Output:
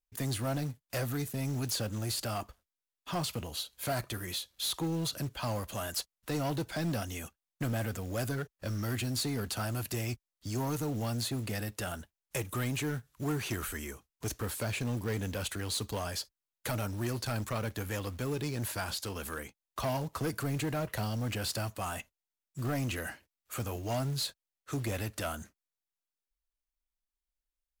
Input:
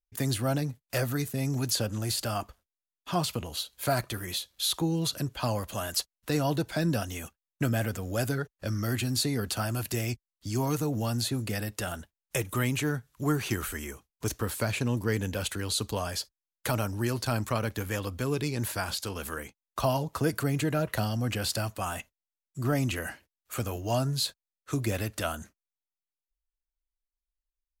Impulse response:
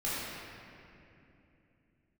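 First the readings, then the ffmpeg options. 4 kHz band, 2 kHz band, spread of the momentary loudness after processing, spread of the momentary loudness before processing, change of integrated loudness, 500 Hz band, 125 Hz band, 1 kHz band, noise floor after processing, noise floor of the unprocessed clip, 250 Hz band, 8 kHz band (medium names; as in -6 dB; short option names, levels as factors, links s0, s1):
-4.5 dB, -4.5 dB, 7 LU, 8 LU, -4.5 dB, -5.0 dB, -4.5 dB, -4.5 dB, under -85 dBFS, under -85 dBFS, -5.0 dB, -4.0 dB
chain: -af "asoftclip=type=tanh:threshold=0.0531,acrusher=bits=5:mode=log:mix=0:aa=0.000001,volume=0.794"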